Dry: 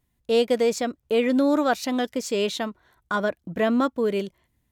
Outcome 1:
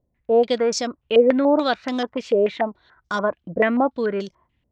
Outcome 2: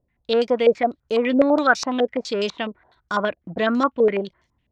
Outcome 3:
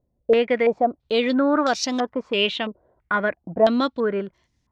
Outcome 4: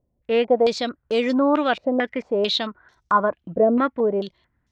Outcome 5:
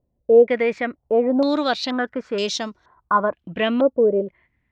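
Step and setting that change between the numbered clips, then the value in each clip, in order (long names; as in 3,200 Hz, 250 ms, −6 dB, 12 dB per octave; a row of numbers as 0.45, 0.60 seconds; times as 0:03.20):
low-pass on a step sequencer, speed: 6.9, 12, 3, 4.5, 2.1 Hertz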